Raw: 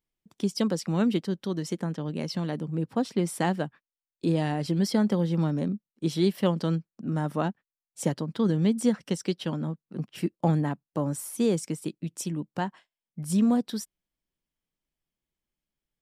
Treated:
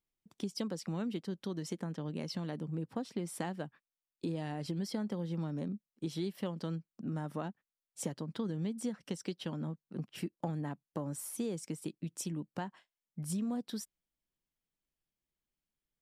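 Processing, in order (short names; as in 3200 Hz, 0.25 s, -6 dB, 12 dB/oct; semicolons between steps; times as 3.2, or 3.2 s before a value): compressor 4:1, threshold -30 dBFS, peak gain reduction 11 dB; gain -4.5 dB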